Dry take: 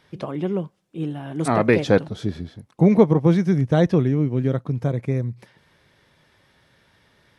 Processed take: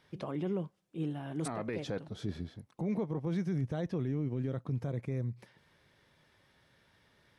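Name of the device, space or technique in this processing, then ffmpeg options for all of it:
stacked limiters: -af "alimiter=limit=-9dB:level=0:latency=1:release=389,alimiter=limit=-13dB:level=0:latency=1:release=252,alimiter=limit=-18dB:level=0:latency=1:release=17,volume=-8dB"

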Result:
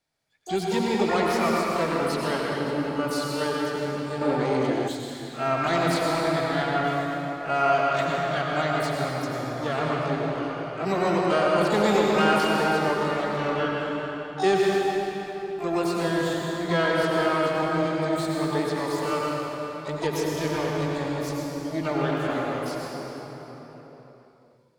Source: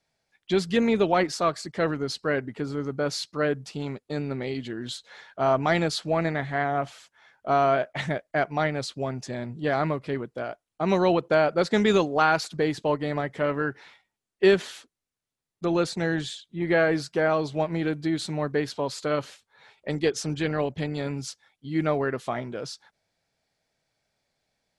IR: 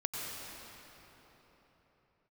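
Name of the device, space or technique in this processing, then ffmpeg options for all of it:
shimmer-style reverb: -filter_complex "[0:a]asplit=2[a][b];[b]asetrate=88200,aresample=44100,atempo=0.5,volume=-6dB[c];[a][c]amix=inputs=2:normalize=0[d];[1:a]atrim=start_sample=2205[e];[d][e]afir=irnorm=-1:irlink=0,asettb=1/sr,asplit=3[f][g][h];[f]atrim=end=4.214[i];[g]atrim=start=4.21:end=4.88,asetpts=PTS-STARTPTS,afade=t=in:d=0.004:c=qsin,afade=t=out:st=0.666:d=0.004:c=qsin,equalizer=f=690:w=0.35:g=8.5[j];[h]atrim=start=4.876[k];[i][j]acrossfade=d=0.004:c1=hsin:c2=qsin[l];[l][k]acrossfade=d=0.004:c1=qsin:c2=hsin,volume=-4dB"

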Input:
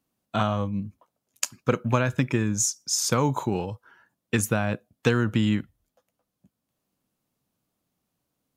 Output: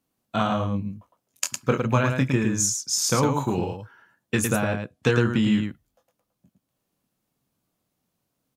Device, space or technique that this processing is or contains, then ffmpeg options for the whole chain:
slapback doubling: -filter_complex "[0:a]asettb=1/sr,asplit=3[a][b][c];[a]atrim=end=4.624[d];[b]atrim=start=4.62:end=5.53,asetpts=PTS-STARTPTS,afade=t=in:d=0.004:c=qsin,afade=t=out:st=0.906:d=0.004:c=qsin,lowpass=11k[e];[c]atrim=start=5.526[f];[d][e]acrossfade=d=0.004:c1=hsin:c2=qsin[g];[g][f]acrossfade=d=0.004:c1=qsin:c2=hsin,asplit=3[h][i][j];[i]adelay=23,volume=-6.5dB[k];[j]adelay=109,volume=-5dB[l];[h][k][l]amix=inputs=3:normalize=0"

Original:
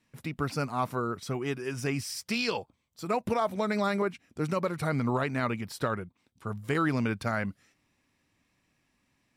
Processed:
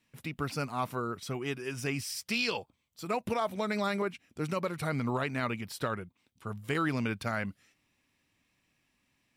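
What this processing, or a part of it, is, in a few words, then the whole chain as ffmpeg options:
presence and air boost: -af "equalizer=f=2.9k:t=o:w=0.98:g=5,highshelf=f=9k:g=6,volume=-3.5dB"

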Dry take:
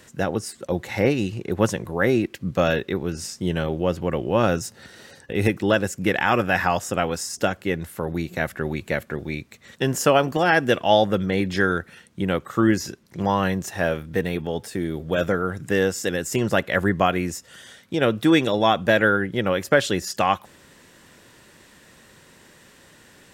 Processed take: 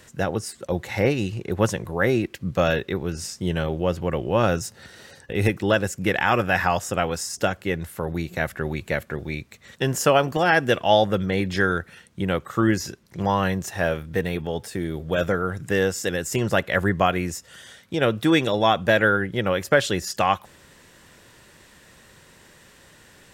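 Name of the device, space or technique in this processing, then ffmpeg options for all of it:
low shelf boost with a cut just above: -af "lowshelf=f=77:g=5.5,equalizer=f=260:t=o:w=1:g=-3.5"

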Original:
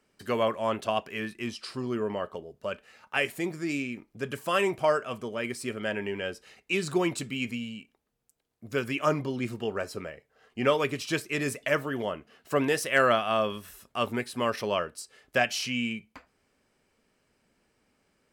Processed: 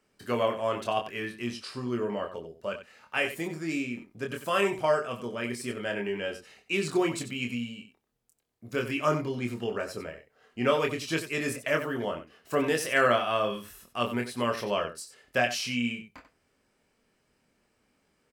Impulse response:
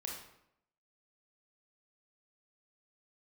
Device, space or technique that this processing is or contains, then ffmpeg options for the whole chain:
slapback doubling: -filter_complex "[0:a]asplit=3[a][b][c];[b]adelay=25,volume=-4.5dB[d];[c]adelay=92,volume=-11dB[e];[a][d][e]amix=inputs=3:normalize=0,volume=-2dB"

